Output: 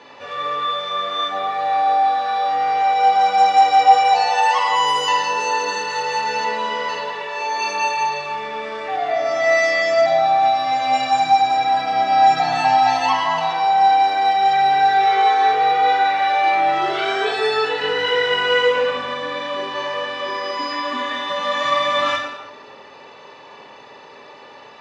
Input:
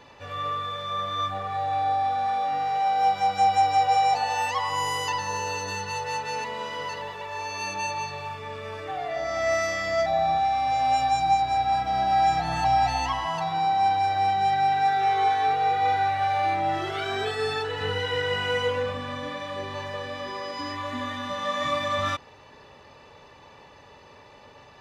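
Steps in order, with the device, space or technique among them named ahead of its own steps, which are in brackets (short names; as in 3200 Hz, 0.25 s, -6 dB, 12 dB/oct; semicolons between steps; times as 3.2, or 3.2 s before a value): supermarket ceiling speaker (BPF 260–5900 Hz; reverb RT60 1.0 s, pre-delay 18 ms, DRR 0.5 dB); gain +6.5 dB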